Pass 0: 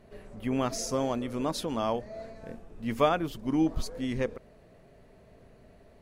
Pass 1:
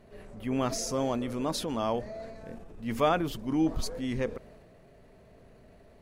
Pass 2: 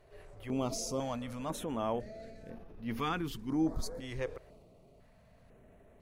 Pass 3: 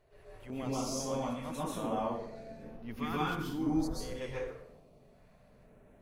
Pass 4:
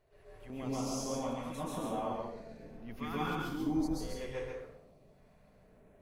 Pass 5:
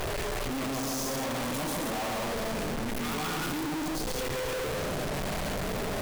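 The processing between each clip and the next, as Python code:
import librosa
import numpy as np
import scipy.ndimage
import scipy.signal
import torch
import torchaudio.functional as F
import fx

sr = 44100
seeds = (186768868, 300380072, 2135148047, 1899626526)

y1 = fx.transient(x, sr, attack_db=-3, sustain_db=4)
y2 = fx.filter_held_notch(y1, sr, hz=2.0, low_hz=220.0, high_hz=7800.0)
y2 = y2 * librosa.db_to_amplitude(-4.0)
y3 = fx.rev_plate(y2, sr, seeds[0], rt60_s=0.69, hf_ratio=0.75, predelay_ms=115, drr_db=-6.5)
y3 = y3 * librosa.db_to_amplitude(-6.5)
y4 = y3 + 10.0 ** (-3.0 / 20.0) * np.pad(y3, (int(138 * sr / 1000.0), 0))[:len(y3)]
y4 = y4 * librosa.db_to_amplitude(-3.5)
y5 = np.sign(y4) * np.sqrt(np.mean(np.square(y4)))
y5 = y5 * librosa.db_to_amplitude(7.0)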